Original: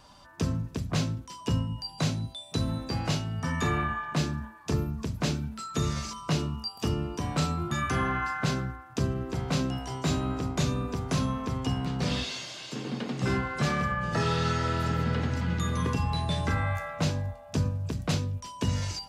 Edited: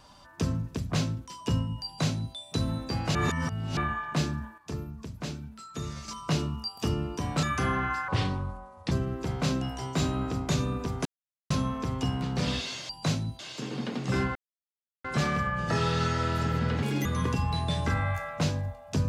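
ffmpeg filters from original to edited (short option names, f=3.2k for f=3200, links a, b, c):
-filter_complex "[0:a]asplit=14[a][b][c][d][e][f][g][h][i][j][k][l][m][n];[a]atrim=end=3.152[o];[b]atrim=start=3.148:end=3.772,asetpts=PTS-STARTPTS,areverse[p];[c]atrim=start=3.768:end=4.582[q];[d]atrim=start=4.578:end=6.082,asetpts=PTS-STARTPTS,volume=-7.5dB[r];[e]atrim=start=6.078:end=7.432[s];[f]atrim=start=7.748:end=8.404[t];[g]atrim=start=8.4:end=9,asetpts=PTS-STARTPTS,asetrate=31752,aresample=44100[u];[h]atrim=start=8.996:end=11.14,asetpts=PTS-STARTPTS,afade=t=out:st=2.14:d=0.004:c=hsin,apad=pad_dur=0.45[v];[i]atrim=start=11.14:end=12.532,asetpts=PTS-STARTPTS,afade=t=in:d=0.004:c=hsin[w];[j]atrim=start=1.848:end=2.352[x];[k]atrim=start=12.528:end=13.49,asetpts=PTS-STARTPTS,afade=t=out:st=0.958:d=0.004:c=hsin,apad=pad_dur=0.69[y];[l]atrim=start=13.49:end=15.274,asetpts=PTS-STARTPTS,afade=t=in:d=0.004:c=hsin[z];[m]atrim=start=15.27:end=15.66,asetpts=PTS-STARTPTS,asetrate=74529,aresample=44100[aa];[n]atrim=start=15.656[ab];[o][p]acrossfade=d=0.004:c1=hsin:c2=hsin[ac];[ac][q]acrossfade=d=0.004:c1=hsin:c2=hsin[ad];[ad][r]acrossfade=d=0.004:c1=hsin:c2=hsin[ae];[ae][s]acrossfade=d=0.004:c1=hsin:c2=hsin[af];[af][t]acrossfade=d=0.004:c1=hsin:c2=hsin[ag];[ag][u]acrossfade=d=0.004:c1=hsin:c2=hsin[ah];[v][w]concat=n=2:v=0:a=1[ai];[ah][ai]acrossfade=d=0.004:c1=hsin:c2=hsin[aj];[aj][x]acrossfade=d=0.004:c1=hsin:c2=hsin[ak];[y][z]concat=n=2:v=0:a=1[al];[ak][al]acrossfade=d=0.004:c1=hsin:c2=hsin[am];[am][aa]acrossfade=d=0.004:c1=hsin:c2=hsin[an];[an][ab]acrossfade=d=0.004:c1=hsin:c2=hsin"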